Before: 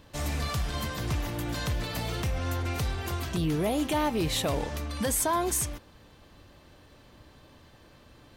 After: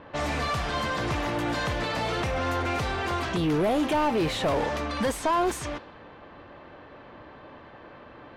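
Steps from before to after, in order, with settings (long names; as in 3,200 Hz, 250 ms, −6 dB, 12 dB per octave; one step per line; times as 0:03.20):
mid-hump overdrive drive 22 dB, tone 1,300 Hz, clips at −16 dBFS
low-pass that shuts in the quiet parts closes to 1,900 Hz, open at −23 dBFS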